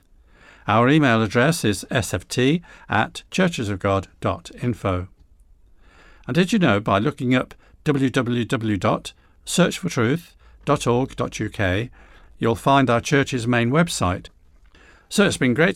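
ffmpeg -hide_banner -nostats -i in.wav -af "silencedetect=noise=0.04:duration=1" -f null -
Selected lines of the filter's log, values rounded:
silence_start: 5.04
silence_end: 6.28 | silence_duration: 1.25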